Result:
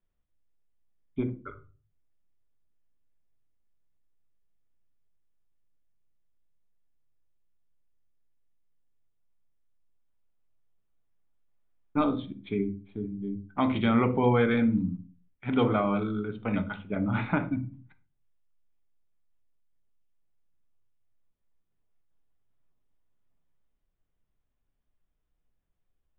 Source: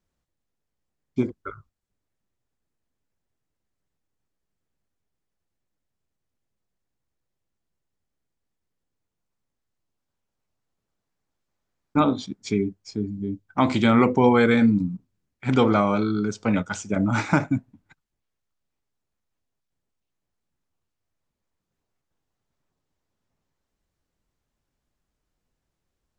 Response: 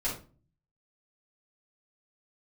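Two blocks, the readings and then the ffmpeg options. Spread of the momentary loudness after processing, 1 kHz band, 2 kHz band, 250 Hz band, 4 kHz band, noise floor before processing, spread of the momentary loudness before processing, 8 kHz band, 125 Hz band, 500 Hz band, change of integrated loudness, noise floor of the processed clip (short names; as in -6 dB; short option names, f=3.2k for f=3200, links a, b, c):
14 LU, -6.5 dB, -7.0 dB, -6.0 dB, -8.0 dB, -82 dBFS, 14 LU, under -35 dB, -4.5 dB, -6.0 dB, -6.0 dB, -77 dBFS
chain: -filter_complex "[0:a]aresample=8000,aresample=44100,asplit=2[a][b];[1:a]atrim=start_sample=2205,afade=t=out:st=0.37:d=0.01,atrim=end_sample=16758,lowshelf=f=150:g=9.5[c];[b][c]afir=irnorm=-1:irlink=0,volume=-14dB[d];[a][d]amix=inputs=2:normalize=0,volume=-8dB"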